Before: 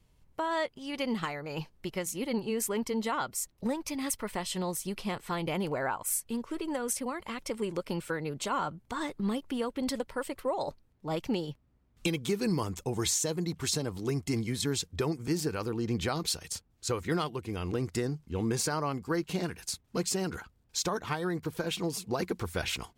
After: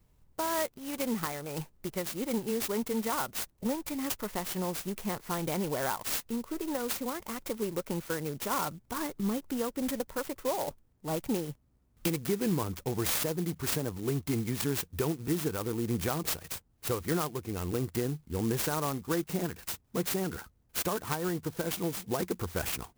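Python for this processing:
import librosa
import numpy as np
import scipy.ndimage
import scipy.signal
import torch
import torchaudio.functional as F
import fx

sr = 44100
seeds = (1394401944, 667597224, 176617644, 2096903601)

y = fx.clock_jitter(x, sr, seeds[0], jitter_ms=0.079)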